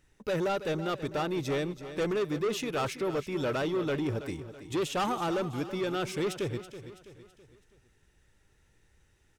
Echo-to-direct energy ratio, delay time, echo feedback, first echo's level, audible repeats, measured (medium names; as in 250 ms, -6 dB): -11.5 dB, 328 ms, 45%, -12.5 dB, 4